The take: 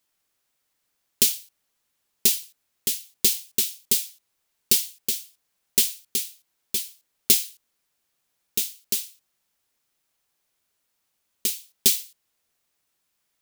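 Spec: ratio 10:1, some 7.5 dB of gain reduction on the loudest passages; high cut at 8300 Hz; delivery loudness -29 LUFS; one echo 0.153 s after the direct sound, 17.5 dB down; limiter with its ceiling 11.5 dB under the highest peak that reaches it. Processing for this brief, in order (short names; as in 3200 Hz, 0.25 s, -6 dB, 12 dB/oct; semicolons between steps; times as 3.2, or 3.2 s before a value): LPF 8300 Hz; compressor 10:1, threshold -26 dBFS; limiter -18.5 dBFS; echo 0.153 s -17.5 dB; gain +8 dB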